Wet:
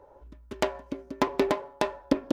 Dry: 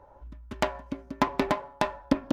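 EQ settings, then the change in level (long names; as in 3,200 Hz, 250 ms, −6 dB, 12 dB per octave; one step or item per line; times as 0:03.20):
parametric band 420 Hz +12 dB 0.98 octaves
high-shelf EQ 2,100 Hz +7.5 dB
−5.5 dB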